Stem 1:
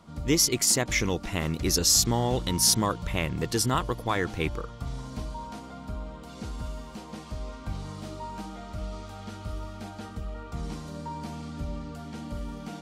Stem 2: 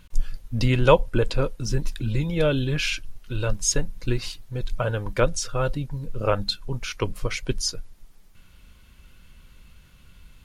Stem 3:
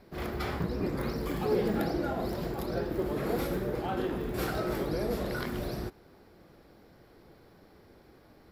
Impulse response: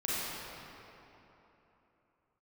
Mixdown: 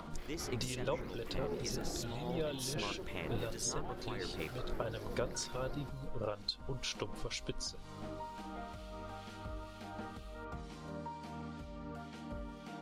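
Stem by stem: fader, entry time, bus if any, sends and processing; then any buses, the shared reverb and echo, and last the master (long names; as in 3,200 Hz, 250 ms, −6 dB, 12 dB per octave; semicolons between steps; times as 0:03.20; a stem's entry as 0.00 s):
−5.5 dB, 0.00 s, bus A, no send, upward compression, threshold −29 dBFS
−2.5 dB, 0.00 s, bus A, no send, octave-band graphic EQ 2,000/4,000/8,000 Hz −7/+8/+7 dB
−11.5 dB, 0.00 s, no bus, no send, phase distortion by the signal itself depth 0.1 ms
bus A: 0.0 dB, bass and treble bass −6 dB, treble −8 dB; downward compressor 6 to 1, threshold −34 dBFS, peak gain reduction 19 dB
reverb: not used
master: two-band tremolo in antiphase 2.1 Hz, depth 50%, crossover 2,000 Hz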